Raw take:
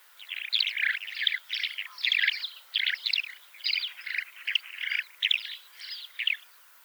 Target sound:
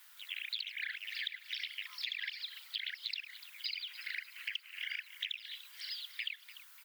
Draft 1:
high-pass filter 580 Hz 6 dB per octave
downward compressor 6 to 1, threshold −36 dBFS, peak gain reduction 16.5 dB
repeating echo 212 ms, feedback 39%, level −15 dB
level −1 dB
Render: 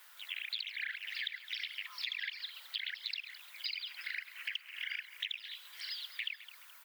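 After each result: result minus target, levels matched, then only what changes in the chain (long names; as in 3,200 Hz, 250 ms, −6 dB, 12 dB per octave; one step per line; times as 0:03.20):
500 Hz band +7.5 dB; echo 82 ms early
change: high-pass filter 2,100 Hz 6 dB per octave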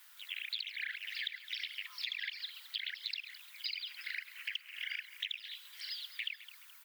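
echo 82 ms early
change: repeating echo 294 ms, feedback 39%, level −15 dB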